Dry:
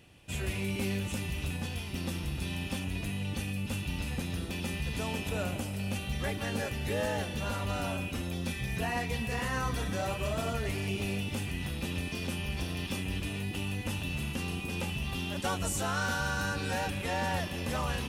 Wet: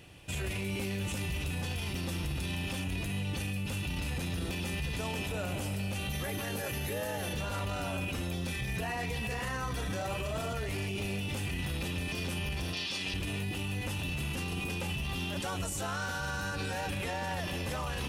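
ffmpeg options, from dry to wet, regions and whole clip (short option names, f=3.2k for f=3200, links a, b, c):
-filter_complex "[0:a]asettb=1/sr,asplit=3[a][b][c];[a]atrim=end=6.104[d];[b]atrim=start=6.1:end=7.33,asetpts=PTS-STARTPTS,afade=t=in:d=0.004:c=qsin,afade=t=out:st=1.226:d=0.004:c=qsin,highpass=74,equalizer=f=12k:t=o:w=0.45:g=12,aeval=exprs='val(0)+0.00141*sin(2*PI*6200*n/s)':c=same[e];[c]atrim=start=7.326[f];[d][e]acrossfade=d=0.004:c1=hsin:c2=qsin[g];[g][f]acrossfade=d=0.004:c1=qsin:c2=hsin,asettb=1/sr,asplit=3[h][i][j];[h]atrim=end=12.734[k];[i]atrim=start=12.73:end=13.14,asetpts=PTS-STARTPTS,afade=t=in:d=0.004:c=qsin,afade=t=out:st=0.406:d=0.004:c=qsin,lowpass=f=4.6k:t=q:w=2.2,aemphasis=mode=production:type=bsi[l];[j]atrim=start=13.136[m];[k][l]acrossfade=d=0.004:c1=hsin:c2=qsin[n];[n][m]acrossfade=d=0.004:c1=qsin:c2=hsin,equalizer=f=230:w=7.2:g=-7.5,alimiter=level_in=8dB:limit=-24dB:level=0:latency=1:release=16,volume=-8dB,volume=5dB"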